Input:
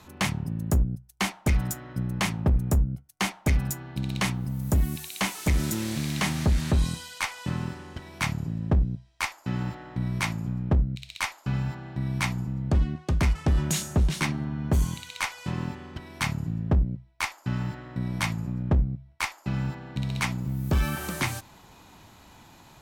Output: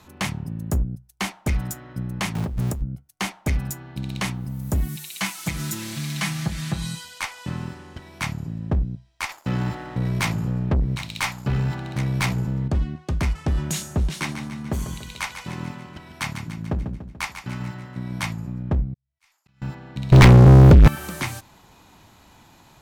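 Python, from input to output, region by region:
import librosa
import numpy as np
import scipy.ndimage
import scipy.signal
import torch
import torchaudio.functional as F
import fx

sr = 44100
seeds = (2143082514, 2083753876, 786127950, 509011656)

y = fx.chain(x, sr, fx.zero_step(step_db=-31.5),
    fx.over_compress(threshold_db=-23.0, ratio=-0.5), at=(2.35, 2.82))
y = fx.chain(y, sr, fx.highpass(hz=92.0, slope=12),
    fx.peak_eq(hz=410.0, db=-10.0, octaves=1.6),
    fx.comb(ms=6.0, depth=0.81), at=(4.88, 7.05))
y = fx.chain(y, sr, fx.echo_single(ms=760, db=-14.5),
    fx.leveller(passes=2), at=(9.29, 12.68))
y = fx.chain(y, sr, fx.low_shelf(hz=130.0, db=-6.5),
    fx.echo_feedback(ms=145, feedback_pct=53, wet_db=-9.5), at=(14.09, 18.23))
y = fx.chain(y, sr, fx.tone_stack(knobs='5-5-5'),
    fx.auto_swell(attack_ms=689.0),
    fx.sustainer(db_per_s=94.0), at=(18.94, 19.62))
y = fx.chain(y, sr, fx.riaa(side='playback'),
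    fx.over_compress(threshold_db=-13.0, ratio=-1.0),
    fx.leveller(passes=5), at=(20.12, 20.88))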